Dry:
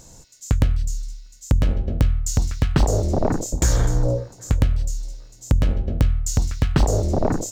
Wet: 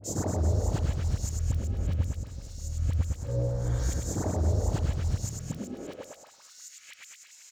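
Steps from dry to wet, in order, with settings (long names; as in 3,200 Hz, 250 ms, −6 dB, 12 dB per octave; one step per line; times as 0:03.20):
played backwards from end to start
downward compressor 4 to 1, threshold −26 dBFS, peak gain reduction 12.5 dB
all-pass dispersion highs, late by 41 ms, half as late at 1,300 Hz
on a send: reverse bouncing-ball delay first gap 100 ms, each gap 1.25×, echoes 5
on the sum: high-pass filter sweep 74 Hz → 2,200 Hz, 0:05.10–0:06.78
level −4.5 dB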